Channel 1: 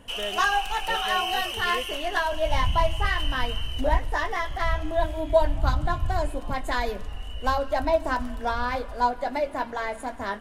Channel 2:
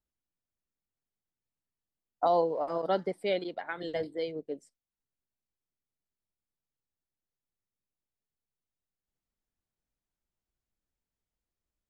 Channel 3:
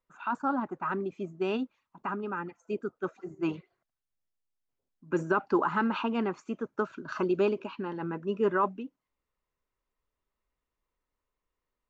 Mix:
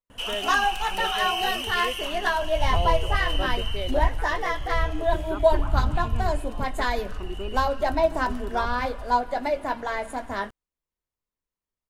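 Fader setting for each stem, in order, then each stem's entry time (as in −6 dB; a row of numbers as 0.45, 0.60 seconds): +1.0, −4.5, −10.0 decibels; 0.10, 0.50, 0.00 seconds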